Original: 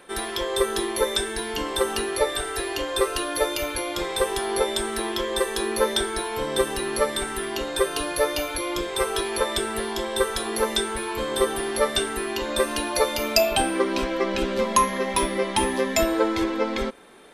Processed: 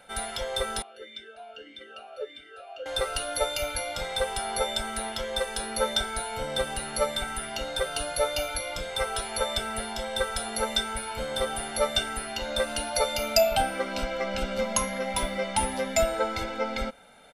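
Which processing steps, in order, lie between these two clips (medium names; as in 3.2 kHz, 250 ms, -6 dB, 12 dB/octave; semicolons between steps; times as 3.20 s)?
comb 1.4 ms, depth 97%; 0.82–2.86 s: talking filter a-i 1.6 Hz; trim -6 dB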